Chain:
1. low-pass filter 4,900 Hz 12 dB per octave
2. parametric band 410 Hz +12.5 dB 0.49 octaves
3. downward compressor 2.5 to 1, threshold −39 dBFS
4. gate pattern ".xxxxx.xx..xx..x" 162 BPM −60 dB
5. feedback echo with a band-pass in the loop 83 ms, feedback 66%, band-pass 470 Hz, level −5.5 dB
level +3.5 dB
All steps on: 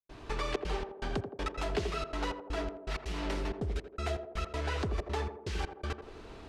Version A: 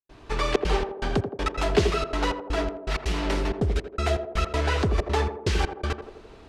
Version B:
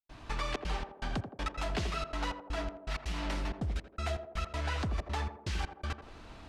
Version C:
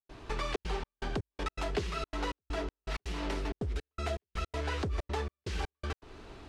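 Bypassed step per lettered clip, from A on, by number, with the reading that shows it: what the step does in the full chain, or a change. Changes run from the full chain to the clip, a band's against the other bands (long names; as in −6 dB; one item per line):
3, average gain reduction 8.5 dB
2, 500 Hz band −5.5 dB
5, echo-to-direct ratio −9.0 dB to none audible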